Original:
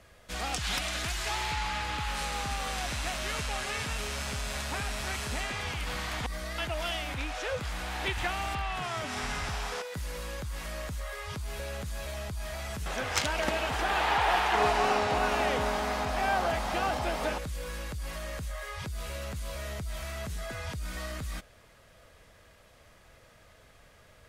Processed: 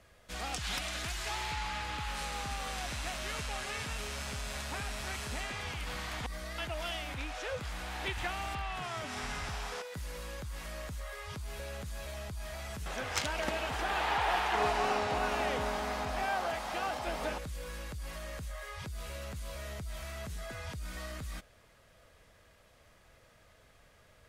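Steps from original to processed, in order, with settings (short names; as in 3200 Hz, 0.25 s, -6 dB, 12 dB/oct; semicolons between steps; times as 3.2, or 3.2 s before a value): 16.24–17.07 low shelf 240 Hz -9 dB; gain -4.5 dB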